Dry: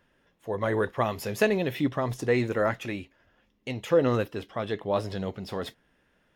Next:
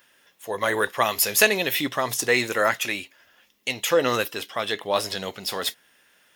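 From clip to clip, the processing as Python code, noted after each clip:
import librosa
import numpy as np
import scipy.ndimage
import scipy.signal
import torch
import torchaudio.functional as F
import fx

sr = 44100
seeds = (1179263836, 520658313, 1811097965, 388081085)

y = fx.tilt_eq(x, sr, slope=4.5)
y = y * 10.0 ** (6.0 / 20.0)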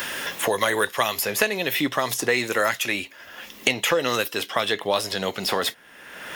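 y = fx.band_squash(x, sr, depth_pct=100)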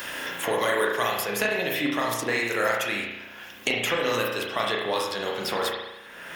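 y = fx.rev_spring(x, sr, rt60_s=1.0, pass_ms=(34,), chirp_ms=65, drr_db=-2.0)
y = y * 10.0 ** (-6.0 / 20.0)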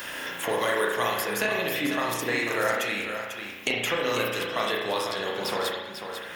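y = x + 10.0 ** (-8.0 / 20.0) * np.pad(x, (int(495 * sr / 1000.0), 0))[:len(x)]
y = y * 10.0 ** (-1.5 / 20.0)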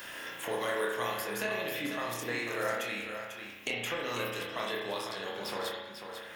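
y = fx.doubler(x, sr, ms=25.0, db=-7)
y = y * 10.0 ** (-8.5 / 20.0)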